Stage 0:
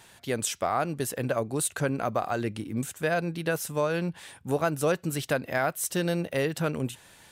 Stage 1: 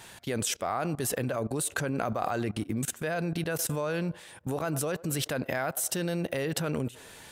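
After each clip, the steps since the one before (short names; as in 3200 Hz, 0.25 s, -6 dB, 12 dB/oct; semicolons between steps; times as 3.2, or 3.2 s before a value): band-limited delay 0.102 s, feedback 54%, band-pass 650 Hz, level -22 dB; level quantiser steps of 19 dB; gain +8 dB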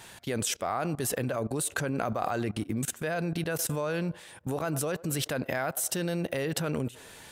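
nothing audible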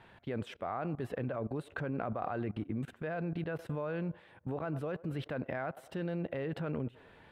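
air absorption 490 m; gain -4.5 dB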